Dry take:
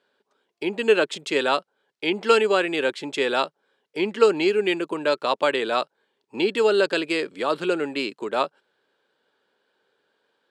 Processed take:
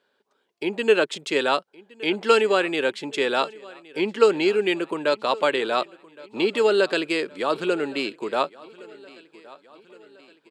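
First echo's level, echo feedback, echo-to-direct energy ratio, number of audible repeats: −22.0 dB, 54%, −20.5 dB, 3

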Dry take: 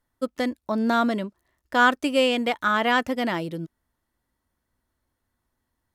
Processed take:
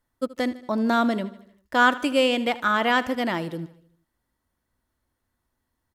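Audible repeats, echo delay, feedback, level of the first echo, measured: 4, 77 ms, 55%, −17.5 dB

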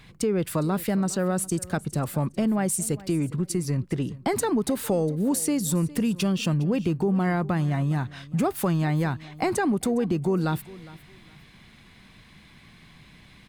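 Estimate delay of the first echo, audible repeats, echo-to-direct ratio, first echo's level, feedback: 409 ms, 2, −19.5 dB, −19.5 dB, 24%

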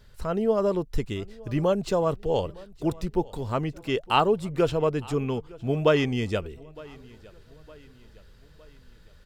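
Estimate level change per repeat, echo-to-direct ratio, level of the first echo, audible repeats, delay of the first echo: −6.5 dB, −21.5 dB, −22.5 dB, 2, 911 ms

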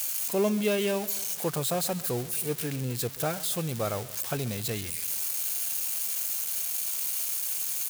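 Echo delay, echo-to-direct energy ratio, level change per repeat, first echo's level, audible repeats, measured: 135 ms, −17.5 dB, −5.0 dB, −19.0 dB, 3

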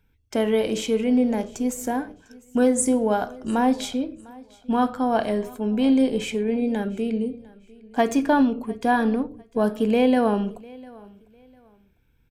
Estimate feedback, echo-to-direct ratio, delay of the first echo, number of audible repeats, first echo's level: 27%, −22.5 dB, 701 ms, 2, −23.0 dB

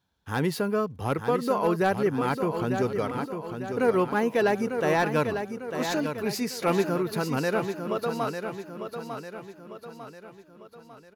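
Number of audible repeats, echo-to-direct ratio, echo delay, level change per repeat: 5, −6.5 dB, 899 ms, −6.5 dB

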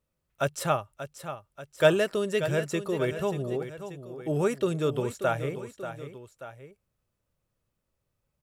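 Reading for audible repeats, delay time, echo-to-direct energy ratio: 2, 585 ms, −10.0 dB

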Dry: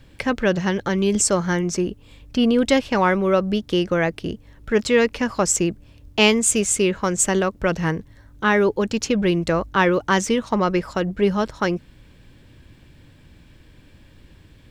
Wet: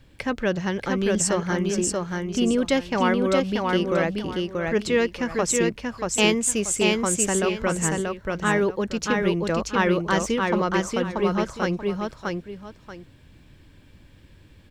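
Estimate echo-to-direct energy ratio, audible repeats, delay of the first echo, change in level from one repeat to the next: −2.5 dB, 2, 633 ms, −11.5 dB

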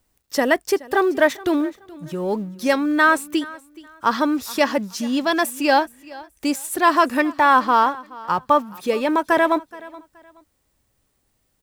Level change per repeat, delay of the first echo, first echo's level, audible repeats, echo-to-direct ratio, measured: −11.5 dB, 424 ms, −20.5 dB, 2, −20.0 dB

